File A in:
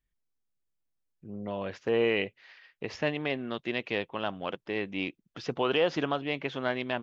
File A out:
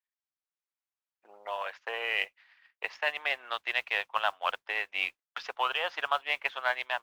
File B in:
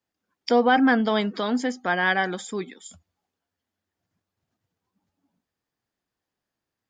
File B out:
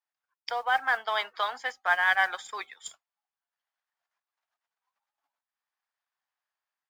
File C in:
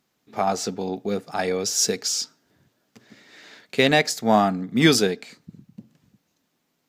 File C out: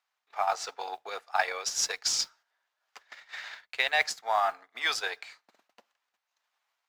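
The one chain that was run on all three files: gate -51 dBFS, range -8 dB; transient shaper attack +7 dB, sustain -7 dB; reverse; compression 5:1, threshold -26 dBFS; reverse; high-pass 830 Hz 24 dB/octave; modulation noise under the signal 22 dB; level rider gain up to 4 dB; low-pass 2.3 kHz 6 dB/octave; trim +4.5 dB

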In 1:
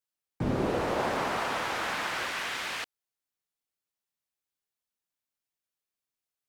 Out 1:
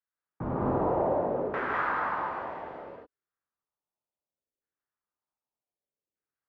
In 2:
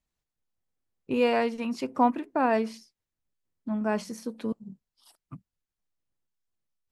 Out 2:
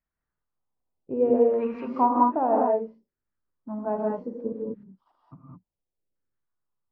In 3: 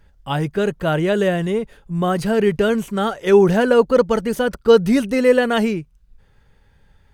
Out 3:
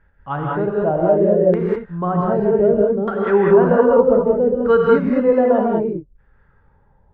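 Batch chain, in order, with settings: LFO low-pass saw down 0.65 Hz 420–1700 Hz; gated-style reverb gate 230 ms rising, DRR -2.5 dB; trim -5.5 dB

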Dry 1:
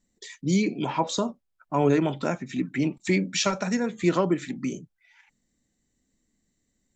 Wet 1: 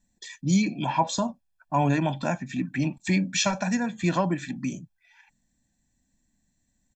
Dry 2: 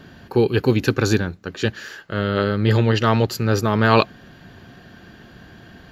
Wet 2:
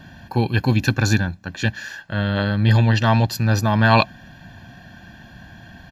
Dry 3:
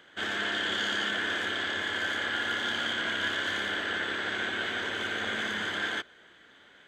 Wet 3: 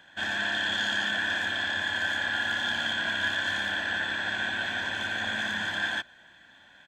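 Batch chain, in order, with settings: comb 1.2 ms, depth 77%; trim -1 dB

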